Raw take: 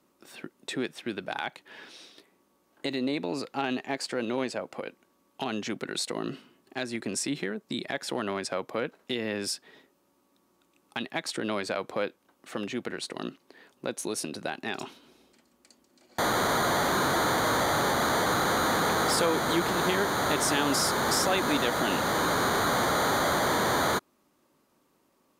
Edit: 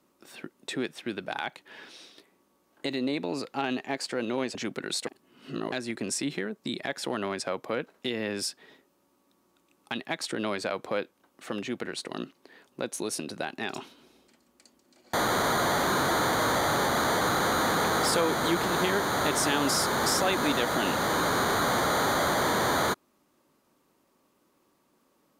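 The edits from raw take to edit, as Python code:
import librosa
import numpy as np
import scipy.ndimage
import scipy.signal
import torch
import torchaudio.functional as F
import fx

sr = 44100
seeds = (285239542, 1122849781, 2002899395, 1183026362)

y = fx.edit(x, sr, fx.cut(start_s=4.55, length_s=1.05),
    fx.reverse_span(start_s=6.12, length_s=0.65), tone=tone)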